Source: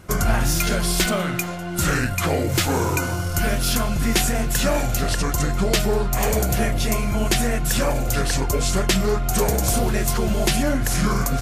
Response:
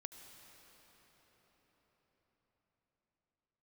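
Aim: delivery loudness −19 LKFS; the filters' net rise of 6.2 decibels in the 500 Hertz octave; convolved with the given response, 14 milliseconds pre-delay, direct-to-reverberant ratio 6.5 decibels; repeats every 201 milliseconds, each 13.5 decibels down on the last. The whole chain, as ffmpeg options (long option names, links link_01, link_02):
-filter_complex "[0:a]equalizer=frequency=500:width_type=o:gain=8,aecho=1:1:201|402:0.211|0.0444,asplit=2[link_01][link_02];[1:a]atrim=start_sample=2205,adelay=14[link_03];[link_02][link_03]afir=irnorm=-1:irlink=0,volume=-2dB[link_04];[link_01][link_04]amix=inputs=2:normalize=0,volume=-0.5dB"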